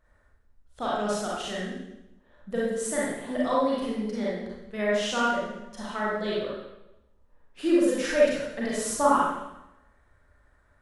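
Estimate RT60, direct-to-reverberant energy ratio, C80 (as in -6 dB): 0.90 s, -6.5 dB, 2.0 dB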